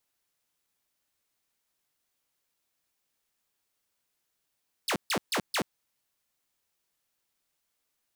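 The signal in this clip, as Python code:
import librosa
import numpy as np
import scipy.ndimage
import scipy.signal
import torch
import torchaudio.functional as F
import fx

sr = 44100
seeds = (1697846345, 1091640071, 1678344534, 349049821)

y = fx.laser_zaps(sr, level_db=-23.0, start_hz=5600.0, end_hz=140.0, length_s=0.08, wave='saw', shots=4, gap_s=0.14)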